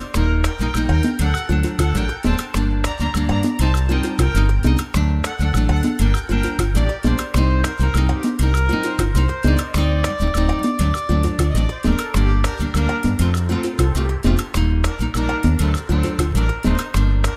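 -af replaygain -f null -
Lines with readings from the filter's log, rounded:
track_gain = +3.2 dB
track_peak = 0.525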